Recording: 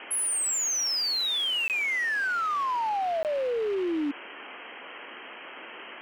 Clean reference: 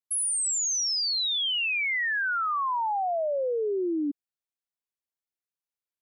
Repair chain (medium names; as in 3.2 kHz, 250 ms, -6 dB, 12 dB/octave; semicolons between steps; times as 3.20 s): clip repair -25 dBFS; interpolate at 1.68/3.23 s, 18 ms; noise print and reduce 30 dB